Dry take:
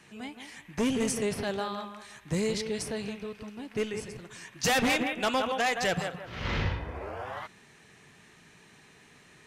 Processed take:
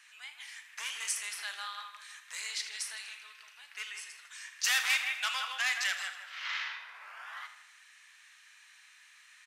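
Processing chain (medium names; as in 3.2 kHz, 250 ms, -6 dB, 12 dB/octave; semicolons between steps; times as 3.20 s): high-pass 1.3 kHz 24 dB/octave; doubling 38 ms -12.5 dB; feedback delay 79 ms, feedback 57%, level -12.5 dB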